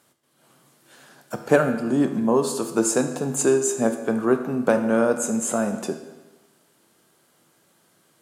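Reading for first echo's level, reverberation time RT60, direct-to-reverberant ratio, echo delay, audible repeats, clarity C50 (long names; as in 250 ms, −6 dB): no echo audible, 1.2 s, 6.5 dB, no echo audible, no echo audible, 8.5 dB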